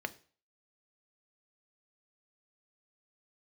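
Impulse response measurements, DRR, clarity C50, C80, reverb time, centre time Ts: 9.5 dB, 19.5 dB, 24.0 dB, 0.40 s, 3 ms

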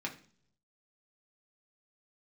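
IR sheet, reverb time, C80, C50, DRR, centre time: 0.55 s, 17.5 dB, 12.5 dB, -1.0 dB, 12 ms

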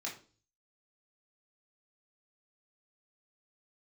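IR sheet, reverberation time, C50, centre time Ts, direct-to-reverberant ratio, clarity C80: 0.40 s, 9.5 dB, 23 ms, -3.5 dB, 15.0 dB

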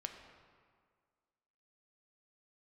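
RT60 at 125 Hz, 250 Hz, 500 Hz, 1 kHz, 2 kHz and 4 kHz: 1.7, 1.9, 1.8, 1.9, 1.6, 1.2 s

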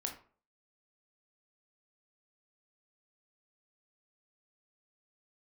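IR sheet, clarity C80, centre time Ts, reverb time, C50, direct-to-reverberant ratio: 14.5 dB, 17 ms, 0.45 s, 9.0 dB, 2.5 dB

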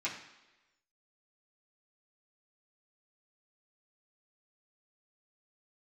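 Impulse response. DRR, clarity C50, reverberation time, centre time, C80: -8.0 dB, 7.0 dB, 1.1 s, 29 ms, 10.0 dB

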